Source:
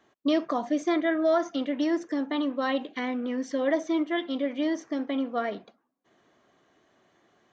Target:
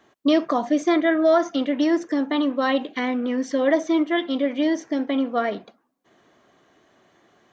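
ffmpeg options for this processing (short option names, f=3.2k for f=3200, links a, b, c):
-filter_complex "[0:a]asettb=1/sr,asplit=3[a][b][c];[a]atrim=end=4.624[d];[b]atrim=start=4.62:end=5.09,asetpts=PTS-STARTPTS,afade=t=in:d=0.004:c=qsin,afade=t=out:st=0.466:d=0.004:c=qsin,bandreject=f=1.2k:w=5.6[e];[c]atrim=start=5.086[f];[d][e]acrossfade=d=0.004:c1=hsin:c2=qsin[g];[g][f]acrossfade=d=0.004:c1=qsin:c2=hsin,volume=6dB"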